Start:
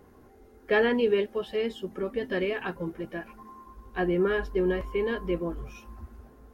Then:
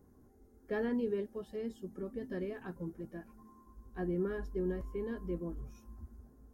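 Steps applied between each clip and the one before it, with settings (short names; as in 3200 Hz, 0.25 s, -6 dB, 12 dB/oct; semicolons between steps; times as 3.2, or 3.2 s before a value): EQ curve 260 Hz 0 dB, 450 Hz -7 dB, 1700 Hz -11 dB, 2700 Hz -19 dB, 6500 Hz -2 dB; gain -5.5 dB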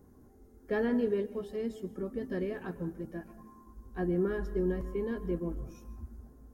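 reverb RT60 0.85 s, pre-delay 0.1 s, DRR 14.5 dB; gain +4.5 dB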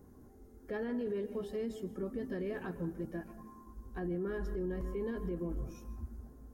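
limiter -31 dBFS, peak gain reduction 11 dB; gain +1 dB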